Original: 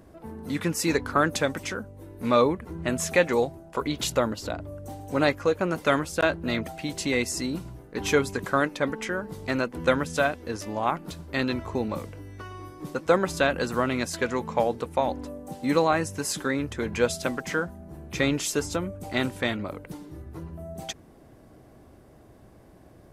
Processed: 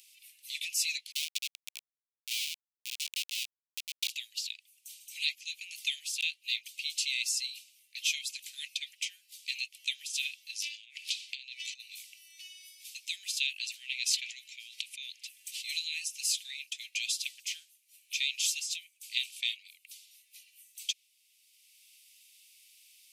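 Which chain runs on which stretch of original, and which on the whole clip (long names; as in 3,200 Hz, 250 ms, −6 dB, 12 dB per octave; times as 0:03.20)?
0:01.12–0:04.10: high-pass filter 160 Hz + comparator with hysteresis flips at −22.5 dBFS
0:10.62–0:11.79: ceiling on every frequency bin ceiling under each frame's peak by 20 dB + high-frequency loss of the air 79 metres + compressor whose output falls as the input rises −35 dBFS, ratio −0.5
0:13.57–0:15.65: spectral tilt −3.5 dB per octave + envelope flattener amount 100%
whole clip: Butterworth high-pass 2,400 Hz 72 dB per octave; dynamic equaliser 3,500 Hz, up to +5 dB, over −47 dBFS, Q 0.8; multiband upward and downward compressor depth 40%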